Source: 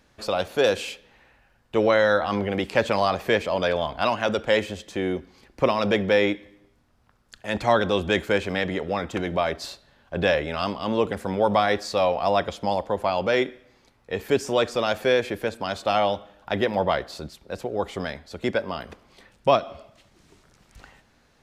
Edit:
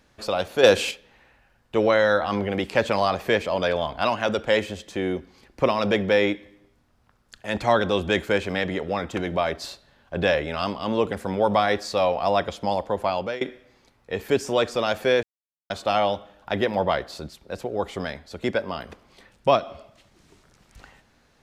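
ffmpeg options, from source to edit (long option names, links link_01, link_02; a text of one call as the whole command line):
ffmpeg -i in.wav -filter_complex "[0:a]asplit=6[link_01][link_02][link_03][link_04][link_05][link_06];[link_01]atrim=end=0.632[link_07];[link_02]atrim=start=0.628:end=0.912,asetpts=PTS-STARTPTS,volume=6dB[link_08];[link_03]atrim=start=0.908:end=13.41,asetpts=PTS-STARTPTS,afade=type=out:start_time=12.112:duration=0.39:curve=qsin:silence=0.0841395[link_09];[link_04]atrim=start=13.41:end=15.23,asetpts=PTS-STARTPTS,afade=type=in:duration=0.004:curve=hsin:silence=0.0841395,afade=type=out:start_time=1.816:duration=0.004:curve=hsin[link_10];[link_05]atrim=start=15.23:end=15.7,asetpts=PTS-STARTPTS,volume=0[link_11];[link_06]atrim=start=15.7,asetpts=PTS-STARTPTS,afade=type=in:duration=0.004:curve=hsin[link_12];[link_07][link_08]acrossfade=duration=0.004:curve1=hsin:curve2=hsin[link_13];[link_09][link_10][link_11][link_12]concat=n=4:v=0:a=1[link_14];[link_13][link_14]acrossfade=duration=0.004:curve1=hsin:curve2=hsin" out.wav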